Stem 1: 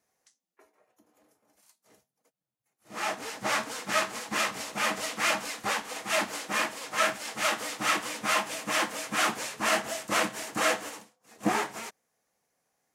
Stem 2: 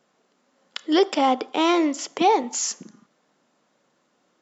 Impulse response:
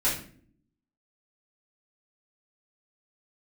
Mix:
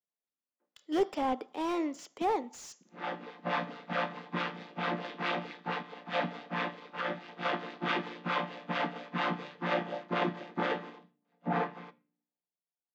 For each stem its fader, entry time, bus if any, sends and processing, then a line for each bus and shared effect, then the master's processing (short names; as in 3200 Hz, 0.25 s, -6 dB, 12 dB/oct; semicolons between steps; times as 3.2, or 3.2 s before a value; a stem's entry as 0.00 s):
-2.0 dB, 0.00 s, send -23.5 dB, chord vocoder major triad, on A#2; limiter -19.5 dBFS, peak gain reduction 10.5 dB; Chebyshev band-pass 190–3900 Hz, order 3
-11.5 dB, 0.00 s, no send, slew limiter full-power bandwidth 120 Hz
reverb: on, pre-delay 3 ms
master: three-band expander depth 70%